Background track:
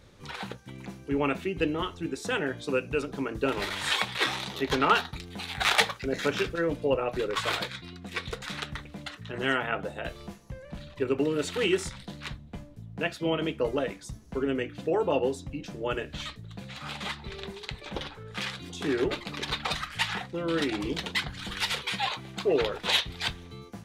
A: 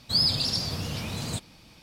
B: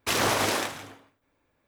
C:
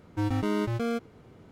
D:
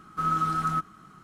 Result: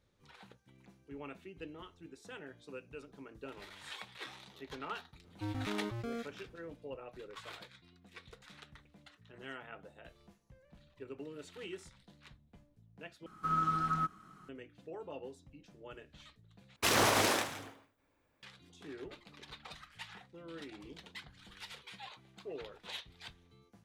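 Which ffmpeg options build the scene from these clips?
-filter_complex "[0:a]volume=-19.5dB[a];[4:a]acrossover=split=5900[b][c];[c]acompressor=threshold=-60dB:ratio=4:attack=1:release=60[d];[b][d]amix=inputs=2:normalize=0[e];[a]asplit=3[f][g][h];[f]atrim=end=13.264[i];[e]atrim=end=1.23,asetpts=PTS-STARTPTS,volume=-6dB[j];[g]atrim=start=14.486:end=16.764[k];[2:a]atrim=end=1.67,asetpts=PTS-STARTPTS,volume=-3.5dB[l];[h]atrim=start=18.426[m];[3:a]atrim=end=1.51,asetpts=PTS-STARTPTS,volume=-11dB,afade=t=in:d=0.004:c=hsin,afade=t=out:st=1.506:d=0.004:c=hsin,adelay=5240[n];[i][j]acrossfade=d=0.004:c1=hsin:c2=hsin[o];[o][k]acrossfade=d=0.004:c1=hsin:c2=hsin[p];[p][l]acrossfade=d=0.004:c1=hsin:c2=hsin[q];[q][m]acrossfade=d=0.004:c1=hsin:c2=hsin[r];[r][n]amix=inputs=2:normalize=0"

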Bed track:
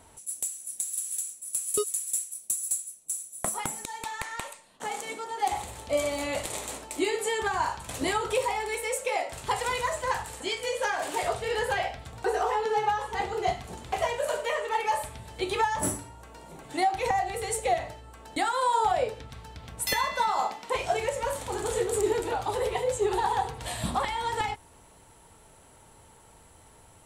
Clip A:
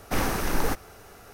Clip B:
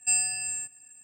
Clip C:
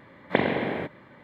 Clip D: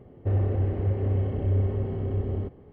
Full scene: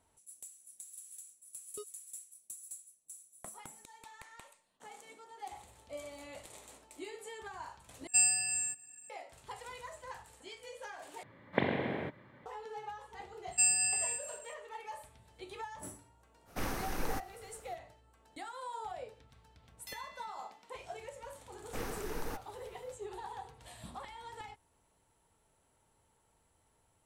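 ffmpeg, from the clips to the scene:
-filter_complex "[2:a]asplit=2[a][b];[1:a]asplit=2[c][d];[0:a]volume=-18dB[e];[3:a]equalizer=f=110:t=o:w=0.67:g=6[f];[b]aecho=1:1:200:0.282[g];[e]asplit=3[h][i][j];[h]atrim=end=8.074[k];[a]atrim=end=1.03,asetpts=PTS-STARTPTS,volume=-2dB[l];[i]atrim=start=9.096:end=11.234[m];[f]atrim=end=1.23,asetpts=PTS-STARTPTS,volume=-8dB[n];[j]atrim=start=12.456[o];[g]atrim=end=1.03,asetpts=PTS-STARTPTS,volume=-3dB,afade=t=in:d=0.004:c=hsin,afade=t=out:st=1.026:d=0.004:c=hsin,adelay=13510[p];[c]atrim=end=1.33,asetpts=PTS-STARTPTS,volume=-11dB,afade=t=in:d=0.05,afade=t=out:st=1.28:d=0.05,adelay=16450[q];[d]atrim=end=1.33,asetpts=PTS-STARTPTS,volume=-15dB,afade=t=in:d=0.004:c=hsin,afade=t=out:st=1.326:d=0.004:c=hsin,adelay=21620[r];[k][l]acrossfade=d=0.004:c1=hsin:c2=hsin[s];[s][m]acrossfade=d=0.004:c1=hsin:c2=hsin[t];[t][n]acrossfade=d=0.004:c1=hsin:c2=hsin[u];[u][o]acrossfade=d=0.004:c1=hsin:c2=hsin[v];[v][p][q][r]amix=inputs=4:normalize=0"

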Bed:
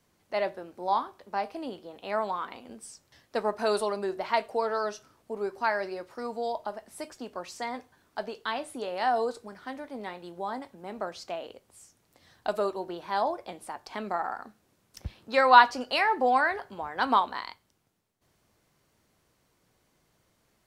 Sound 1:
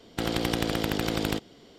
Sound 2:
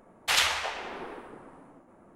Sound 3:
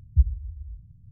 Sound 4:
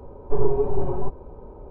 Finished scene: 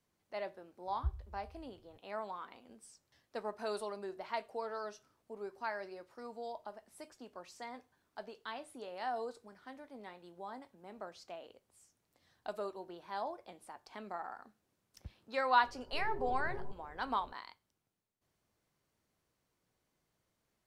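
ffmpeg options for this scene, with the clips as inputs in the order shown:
-filter_complex "[0:a]volume=-12dB[a];[4:a]alimiter=limit=-16.5dB:level=0:latency=1:release=71[b];[3:a]atrim=end=1.11,asetpts=PTS-STARTPTS,volume=-17.5dB,afade=t=in:d=0.004:c=hsin,afade=t=out:st=1.106:d=0.004:c=hsin,adelay=870[c];[b]atrim=end=1.7,asetpts=PTS-STARTPTS,volume=-16dB,afade=t=in:d=0.004:c=hsin,afade=t=out:st=1.696:d=0.004:c=hsin,adelay=15630[d];[a][c][d]amix=inputs=3:normalize=0"

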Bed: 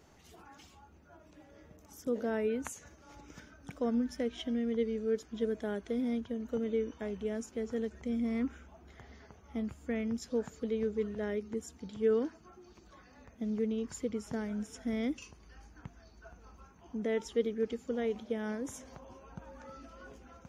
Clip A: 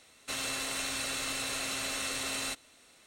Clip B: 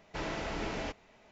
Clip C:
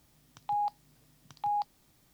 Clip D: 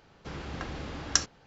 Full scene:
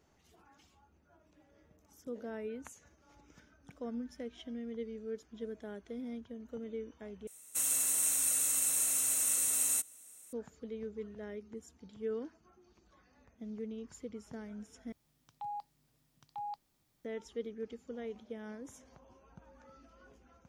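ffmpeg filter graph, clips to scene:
-filter_complex "[0:a]volume=-9dB[a];[1:a]aexciter=amount=15:drive=3.6:freq=6.6k[b];[a]asplit=3[c][d][e];[c]atrim=end=7.274[f];[b]atrim=end=3.06,asetpts=PTS-STARTPTS,volume=-11dB[g];[d]atrim=start=10.326:end=14.924[h];[3:a]atrim=end=2.13,asetpts=PTS-STARTPTS,volume=-10.5dB[i];[e]atrim=start=17.046[j];[f][g]acrossfade=d=0.004:c1=hsin:c2=hsin[k];[k][h]acrossfade=d=0.004:c1=hsin:c2=hsin[l];[l][i]acrossfade=d=0.004:c1=hsin:c2=hsin[m];[m][j]acrossfade=d=0.004:c1=hsin:c2=hsin"

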